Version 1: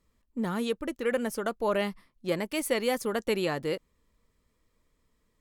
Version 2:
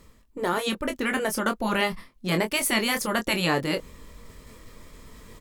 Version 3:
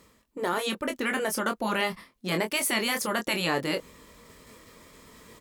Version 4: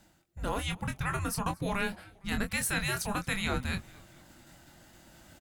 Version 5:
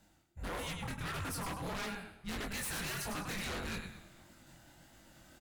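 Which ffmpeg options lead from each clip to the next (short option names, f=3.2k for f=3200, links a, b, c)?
-filter_complex "[0:a]afftfilt=real='re*lt(hypot(re,im),0.224)':imag='im*lt(hypot(re,im),0.224)':win_size=1024:overlap=0.75,areverse,acompressor=mode=upward:threshold=-39dB:ratio=2.5,areverse,asplit=2[a][b];[b]adelay=23,volume=-7.5dB[c];[a][c]amix=inputs=2:normalize=0,volume=8.5dB"
-filter_complex "[0:a]highpass=f=210:p=1,asplit=2[a][b];[b]alimiter=limit=-20dB:level=0:latency=1:release=31,volume=-2.5dB[c];[a][c]amix=inputs=2:normalize=0,volume=-5dB"
-filter_complex "[0:a]afreqshift=-390,asplit=4[a][b][c][d];[b]adelay=229,afreqshift=-110,volume=-23.5dB[e];[c]adelay=458,afreqshift=-220,volume=-29.2dB[f];[d]adelay=687,afreqshift=-330,volume=-34.9dB[g];[a][e][f][g]amix=inputs=4:normalize=0,volume=-4dB"
-af "aecho=1:1:102|204|306|408:0.398|0.135|0.046|0.0156,flanger=delay=18.5:depth=7.8:speed=1.6,aeval=exprs='0.0237*(abs(mod(val(0)/0.0237+3,4)-2)-1)':c=same,volume=-1.5dB"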